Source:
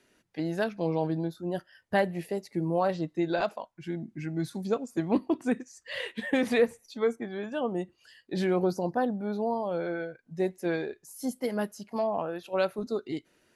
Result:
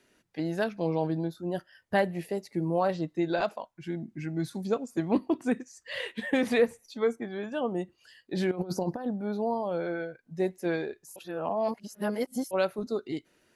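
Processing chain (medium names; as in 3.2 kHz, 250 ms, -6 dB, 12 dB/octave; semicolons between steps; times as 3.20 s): 8.51–9.07 s: compressor with a negative ratio -31 dBFS, ratio -0.5; 11.16–12.51 s: reverse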